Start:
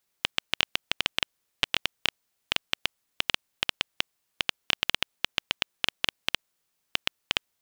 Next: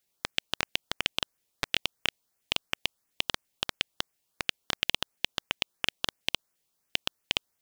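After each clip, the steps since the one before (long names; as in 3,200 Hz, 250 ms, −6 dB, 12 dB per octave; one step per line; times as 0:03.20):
auto-filter notch saw up 2.9 Hz 940–4,400 Hz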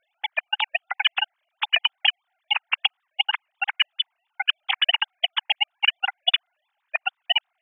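three sine waves on the formant tracks
level +9 dB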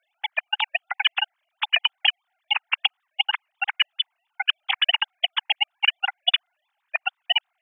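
high-pass filter 580 Hz 24 dB per octave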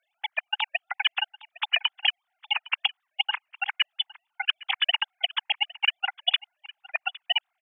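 single-tap delay 810 ms −20.5 dB
level −3.5 dB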